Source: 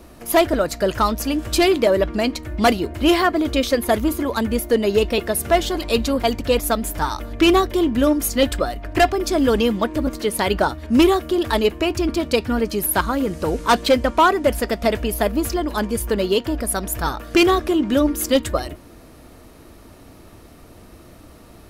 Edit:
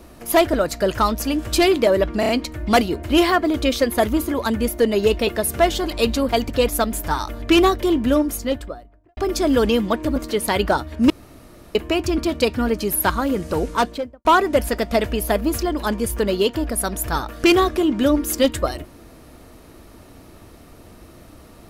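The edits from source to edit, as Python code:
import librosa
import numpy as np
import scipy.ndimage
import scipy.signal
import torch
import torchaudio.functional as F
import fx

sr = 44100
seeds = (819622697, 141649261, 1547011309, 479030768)

y = fx.studio_fade_out(x, sr, start_s=7.86, length_s=1.22)
y = fx.studio_fade_out(y, sr, start_s=13.5, length_s=0.66)
y = fx.edit(y, sr, fx.stutter(start_s=2.2, slice_s=0.03, count=4),
    fx.room_tone_fill(start_s=11.01, length_s=0.65), tone=tone)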